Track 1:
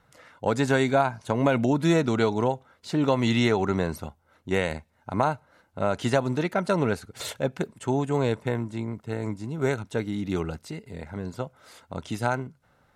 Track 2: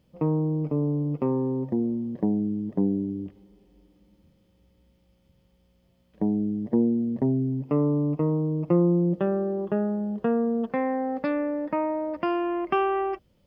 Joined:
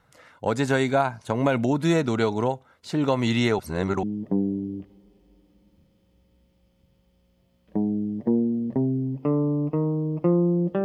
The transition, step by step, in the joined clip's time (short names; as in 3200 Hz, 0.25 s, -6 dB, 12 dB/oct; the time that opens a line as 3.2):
track 1
3.59–4.03 reverse
4.03 switch to track 2 from 2.49 s